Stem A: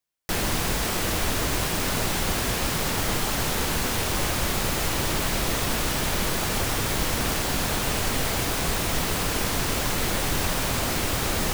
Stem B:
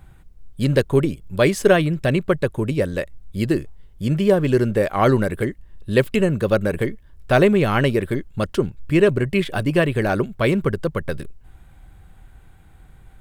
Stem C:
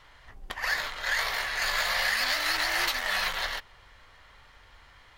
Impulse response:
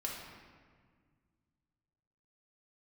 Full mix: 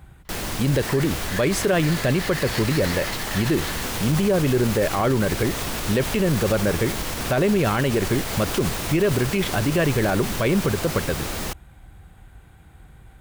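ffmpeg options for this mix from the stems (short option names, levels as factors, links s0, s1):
-filter_complex "[0:a]volume=0.668[s0];[1:a]highpass=40,volume=1.33[s1];[2:a]adelay=250,volume=0.708[s2];[s0][s2]amix=inputs=2:normalize=0,dynaudnorm=f=440:g=11:m=3.76,alimiter=limit=0.141:level=0:latency=1:release=487,volume=1[s3];[s1][s3]amix=inputs=2:normalize=0,alimiter=limit=0.251:level=0:latency=1:release=35"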